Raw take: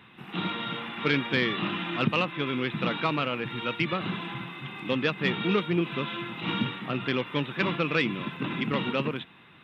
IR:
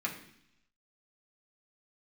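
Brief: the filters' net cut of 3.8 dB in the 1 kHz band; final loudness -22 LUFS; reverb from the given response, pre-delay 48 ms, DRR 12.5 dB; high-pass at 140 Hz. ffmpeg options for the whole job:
-filter_complex "[0:a]highpass=140,equalizer=f=1000:t=o:g=-5,asplit=2[s0][s1];[1:a]atrim=start_sample=2205,adelay=48[s2];[s1][s2]afir=irnorm=-1:irlink=0,volume=0.141[s3];[s0][s3]amix=inputs=2:normalize=0,volume=2.37"

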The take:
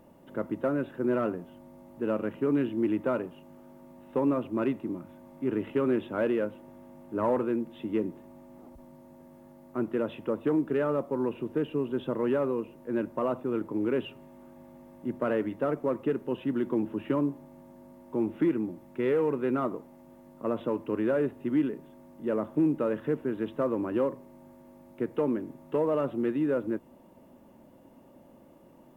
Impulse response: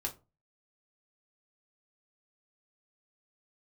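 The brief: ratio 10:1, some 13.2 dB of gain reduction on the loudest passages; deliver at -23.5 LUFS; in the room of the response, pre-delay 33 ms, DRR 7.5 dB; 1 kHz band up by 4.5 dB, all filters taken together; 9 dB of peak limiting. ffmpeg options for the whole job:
-filter_complex "[0:a]equalizer=f=1000:t=o:g=5.5,acompressor=threshold=0.0178:ratio=10,alimiter=level_in=2.37:limit=0.0631:level=0:latency=1,volume=0.422,asplit=2[s0][s1];[1:a]atrim=start_sample=2205,adelay=33[s2];[s1][s2]afir=irnorm=-1:irlink=0,volume=0.355[s3];[s0][s3]amix=inputs=2:normalize=0,volume=8.41"

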